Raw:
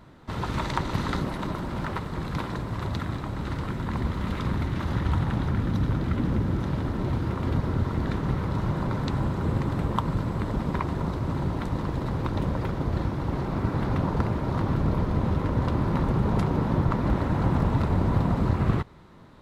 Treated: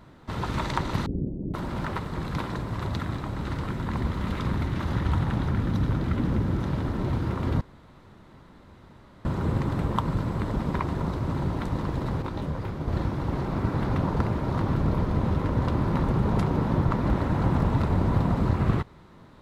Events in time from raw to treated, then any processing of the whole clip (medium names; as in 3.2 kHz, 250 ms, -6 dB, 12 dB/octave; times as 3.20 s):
1.06–1.54 s: inverse Chebyshev low-pass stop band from 1.1 kHz, stop band 50 dB
7.61–9.25 s: room tone
12.22–12.88 s: detune thickener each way 41 cents